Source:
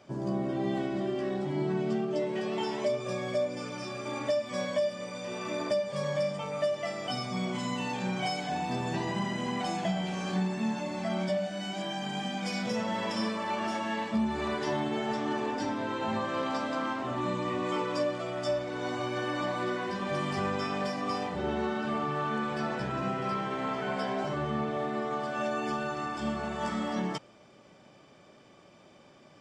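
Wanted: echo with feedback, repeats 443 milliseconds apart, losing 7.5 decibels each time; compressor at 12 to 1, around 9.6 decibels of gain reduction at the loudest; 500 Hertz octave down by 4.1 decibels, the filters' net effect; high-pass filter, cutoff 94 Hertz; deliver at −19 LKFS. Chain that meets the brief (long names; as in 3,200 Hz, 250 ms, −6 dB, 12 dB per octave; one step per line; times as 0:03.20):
high-pass filter 94 Hz
parametric band 500 Hz −5.5 dB
downward compressor 12 to 1, threshold −35 dBFS
repeating echo 443 ms, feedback 42%, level −7.5 dB
level +19.5 dB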